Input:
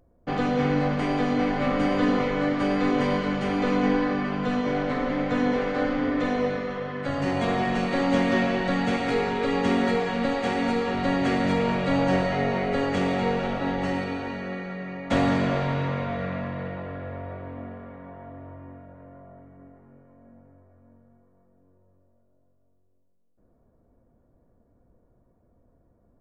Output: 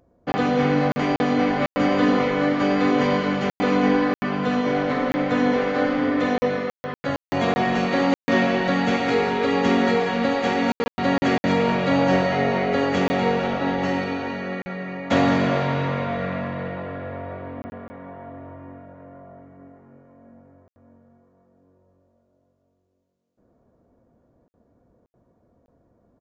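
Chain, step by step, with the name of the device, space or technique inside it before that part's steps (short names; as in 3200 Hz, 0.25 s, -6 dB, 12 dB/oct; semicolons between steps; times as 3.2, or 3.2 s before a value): call with lost packets (HPF 130 Hz 6 dB/oct; downsampling 16000 Hz; packet loss packets of 20 ms bursts); gain +4.5 dB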